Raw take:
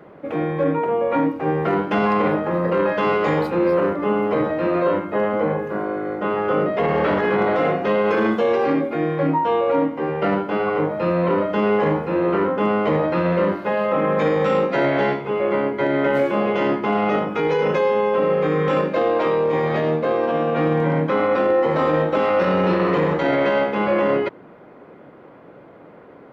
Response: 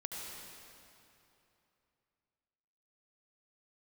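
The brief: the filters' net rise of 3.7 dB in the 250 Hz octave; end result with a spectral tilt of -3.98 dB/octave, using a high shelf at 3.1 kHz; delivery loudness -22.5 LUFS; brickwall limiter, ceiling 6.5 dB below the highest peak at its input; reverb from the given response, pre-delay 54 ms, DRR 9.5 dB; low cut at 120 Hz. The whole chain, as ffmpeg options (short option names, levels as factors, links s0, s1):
-filter_complex "[0:a]highpass=120,equalizer=f=250:t=o:g=5.5,highshelf=f=3100:g=-7.5,alimiter=limit=0.237:level=0:latency=1,asplit=2[s0][s1];[1:a]atrim=start_sample=2205,adelay=54[s2];[s1][s2]afir=irnorm=-1:irlink=0,volume=0.316[s3];[s0][s3]amix=inputs=2:normalize=0,volume=0.794"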